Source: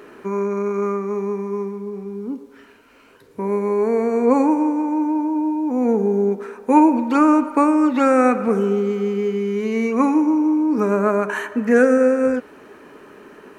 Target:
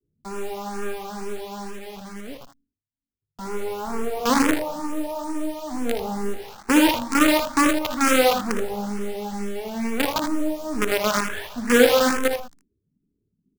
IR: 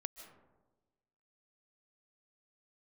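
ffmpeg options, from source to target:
-filter_complex "[0:a]agate=range=-33dB:threshold=-37dB:ratio=3:detection=peak,acrossover=split=170[link_01][link_02];[link_02]acrusher=bits=3:dc=4:mix=0:aa=0.000001[link_03];[link_01][link_03]amix=inputs=2:normalize=0,lowshelf=frequency=340:gain=-3,asplit=2[link_04][link_05];[link_05]aecho=0:1:58|79:0.316|0.398[link_06];[link_04][link_06]amix=inputs=2:normalize=0,asplit=2[link_07][link_08];[link_08]afreqshift=2.2[link_09];[link_07][link_09]amix=inputs=2:normalize=1,volume=-1dB"

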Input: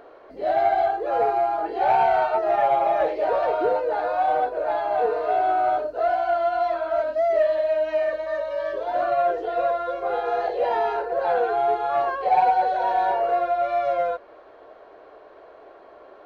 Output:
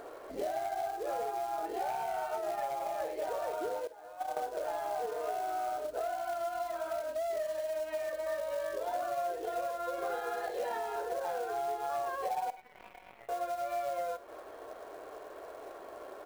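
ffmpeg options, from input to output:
ffmpeg -i in.wav -filter_complex "[0:a]asettb=1/sr,asplit=3[link_01][link_02][link_03];[link_01]atrim=end=3.874[link_04];[link_02]atrim=start=3.87:end=4.37,asetpts=PTS-STARTPTS,afade=type=in:duration=0.004:curve=qsin,afade=type=out:start_time=0.496:duration=0.004:curve=qsin,agate=range=-24dB:threshold=-18dB:ratio=16:detection=peak[link_05];[link_03]atrim=start=4.366[link_06];[link_04][link_05]acrossfade=duration=0.004:curve1=hsin:curve2=qsin[link_07];[link_07][link_06]acrossfade=duration=0.004:curve1=qsin:curve2=hsin,asettb=1/sr,asplit=3[link_08][link_09][link_10];[link_08]atrim=end=9.984[link_11];[link_09]atrim=start=9.98:end=10.78,asetpts=PTS-STARTPTS,afade=type=in:duration=0.004:curve=qsin,afade=type=out:start_time=0.796:duration=0.004:curve=qsin,equalizer=frequency=100:width_type=o:width=0.67:gain=-6,equalizer=frequency=250:width_type=o:width=0.67:gain=8,equalizer=frequency=1600:width_type=o:width=0.67:gain=7,equalizer=frequency=4000:width_type=o:width=0.67:gain=5[link_12];[link_10]atrim=start=10.776[link_13];[link_11][link_12]acrossfade=duration=0.004:curve1=hsin:curve2=qsin[link_14];[link_14][link_13]acrossfade=duration=0.004:curve1=qsin:curve2=hsin,acompressor=threshold=-33dB:ratio=12,asettb=1/sr,asplit=3[link_15][link_16][link_17];[link_15]atrim=end=12.504[link_18];[link_16]atrim=start=12.5:end=13.29,asetpts=PTS-STARTPTS,afade=type=in:duration=0.004:curve=qsin,afade=type=out:start_time=0.786:duration=0.004:curve=qsin,aeval=exprs='0.0794*(cos(1*acos(clip(val(0)/0.0794,-1,1)))-cos(1*PI/2))+0.0282*(cos(3*acos(clip(val(0)/0.0794,-1,1)))-cos(3*PI/2))+0.000562*(cos(4*acos(clip(val(0)/0.0794,-1,1)))-cos(4*PI/2))':channel_layout=same[link_19];[link_17]atrim=start=13.286[link_20];[link_18][link_19]acrossfade=duration=0.004:curve1=hsin:curve2=qsin[link_21];[link_21][link_20]acrossfade=duration=0.004:curve1=qsin:curve2=hsin,acrusher=bits=4:mode=log:mix=0:aa=0.000001,aecho=1:1:49|66:0.158|0.126" out.wav

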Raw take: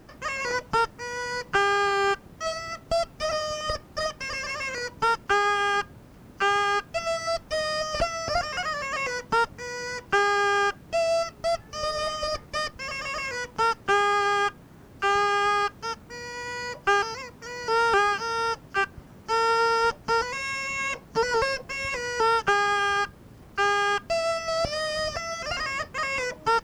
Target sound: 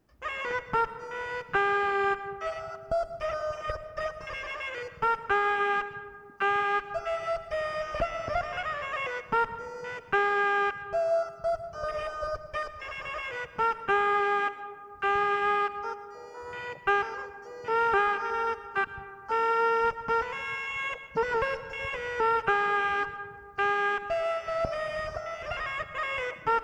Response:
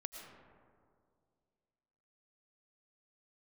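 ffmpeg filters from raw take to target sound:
-filter_complex "[0:a]afwtdn=0.0282,asplit=2[link_01][link_02];[1:a]atrim=start_sample=2205,highshelf=frequency=7800:gain=9[link_03];[link_02][link_03]afir=irnorm=-1:irlink=0,volume=-0.5dB[link_04];[link_01][link_04]amix=inputs=2:normalize=0,volume=-7dB"

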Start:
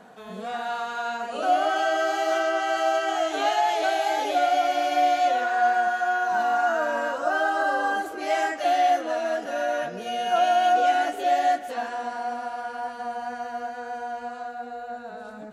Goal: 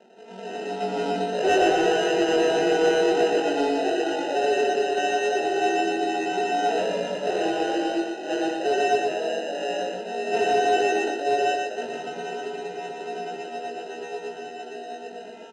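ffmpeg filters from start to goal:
ffmpeg -i in.wav -filter_complex "[0:a]adynamicsmooth=sensitivity=3.5:basefreq=720,acrusher=samples=39:mix=1:aa=0.000001,highpass=frequency=240:width=0.5412,highpass=frequency=240:width=1.3066,equalizer=frequency=270:width_type=q:width=4:gain=-8,equalizer=frequency=470:width_type=q:width=4:gain=-3,equalizer=frequency=1700:width_type=q:width=4:gain=-10,equalizer=frequency=2400:width_type=q:width=4:gain=3,equalizer=frequency=4500:width_type=q:width=4:gain=-6,lowpass=frequency=6900:width=0.5412,lowpass=frequency=6900:width=1.3066,asettb=1/sr,asplit=3[link_01][link_02][link_03];[link_01]atrim=end=0.804[link_04];[link_02]atrim=start=0.8:end=3.4,asetpts=PTS-STARTPTS,afade=type=in:duration=0.004:curve=qsin,afade=type=out:start_time=2.596:duration=0.004:curve=qsin,acontrast=28[link_05];[link_03]atrim=start=3.396[link_06];[link_04][link_05]acrossfade=duration=0.004:curve1=hsin:curve2=qsin[link_07];[link_07][link_06]acrossfade=duration=0.004:curve1=qsin:curve2=hsin,highshelf=frequency=3400:gain=-8,asplit=2[link_08][link_09];[link_09]adelay=21,volume=-3.5dB[link_10];[link_08][link_10]amix=inputs=2:normalize=0,asoftclip=type=tanh:threshold=-11.5dB,aecho=1:1:119|238|357:0.708|0.17|0.0408" out.wav

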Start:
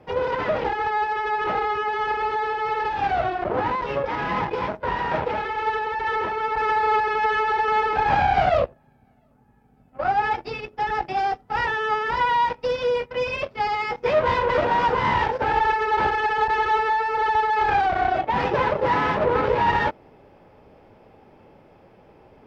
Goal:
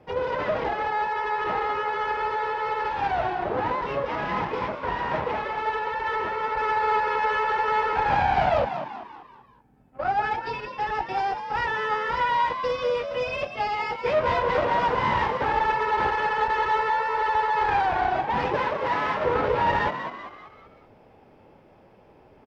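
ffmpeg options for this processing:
ffmpeg -i in.wav -filter_complex "[0:a]asettb=1/sr,asplit=3[link_01][link_02][link_03];[link_01]atrim=end=18.574[link_04];[link_02]atrim=start=18.57:end=19.25,asetpts=PTS-STARTPTS,afade=type=in:duration=0.004:curve=qsin,afade=type=out:start_time=0.676:duration=0.004:curve=qsin,lowshelf=frequency=470:gain=-7.5[link_05];[link_03]atrim=start=19.246[link_06];[link_04][link_05]acrossfade=duration=0.004:curve1=hsin:curve2=qsin[link_07];[link_07][link_06]acrossfade=duration=0.004:curve1=qsin:curve2=hsin,asplit=6[link_08][link_09][link_10][link_11][link_12][link_13];[link_09]adelay=193,afreqshift=78,volume=-9dB[link_14];[link_10]adelay=386,afreqshift=156,volume=-15.7dB[link_15];[link_11]adelay=579,afreqshift=234,volume=-22.5dB[link_16];[link_12]adelay=772,afreqshift=312,volume=-29.2dB[link_17];[link_13]adelay=965,afreqshift=390,volume=-36dB[link_18];[link_08][link_14][link_15][link_16][link_17][link_18]amix=inputs=6:normalize=0,volume=-3dB" out.wav

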